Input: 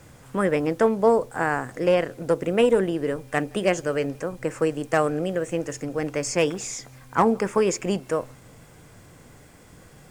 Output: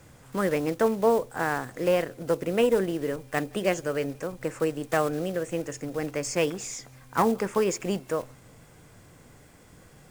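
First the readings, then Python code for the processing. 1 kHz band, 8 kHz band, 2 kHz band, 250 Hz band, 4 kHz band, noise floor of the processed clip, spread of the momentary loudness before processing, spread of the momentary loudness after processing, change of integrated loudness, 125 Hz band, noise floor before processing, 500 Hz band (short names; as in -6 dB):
-3.5 dB, -3.0 dB, -3.5 dB, -3.5 dB, -2.5 dB, -53 dBFS, 9 LU, 9 LU, -3.5 dB, -3.5 dB, -50 dBFS, -3.5 dB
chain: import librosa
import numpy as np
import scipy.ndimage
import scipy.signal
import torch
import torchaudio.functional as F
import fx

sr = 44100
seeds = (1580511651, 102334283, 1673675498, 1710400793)

y = fx.block_float(x, sr, bits=5)
y = y * 10.0 ** (-3.5 / 20.0)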